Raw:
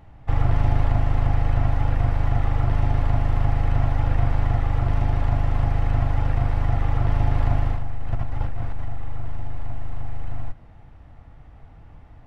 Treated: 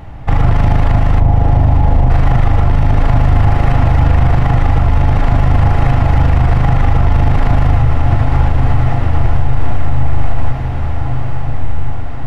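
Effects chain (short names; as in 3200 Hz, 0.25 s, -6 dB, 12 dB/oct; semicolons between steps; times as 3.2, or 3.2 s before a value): 1.2–2.1 steep low-pass 1000 Hz 72 dB/oct; on a send: diffused feedback echo 0.999 s, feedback 64%, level -7 dB; on the sum: maximiser +17.5 dB; gain -1 dB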